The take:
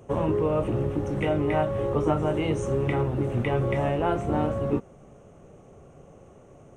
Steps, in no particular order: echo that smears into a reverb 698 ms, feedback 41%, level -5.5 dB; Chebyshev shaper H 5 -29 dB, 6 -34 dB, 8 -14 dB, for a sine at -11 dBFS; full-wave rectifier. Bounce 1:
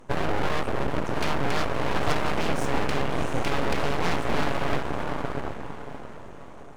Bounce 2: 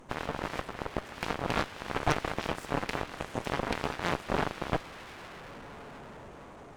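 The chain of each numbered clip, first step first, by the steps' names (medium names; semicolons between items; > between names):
echo that smears into a reverb > Chebyshev shaper > full-wave rectifier; echo that smears into a reverb > full-wave rectifier > Chebyshev shaper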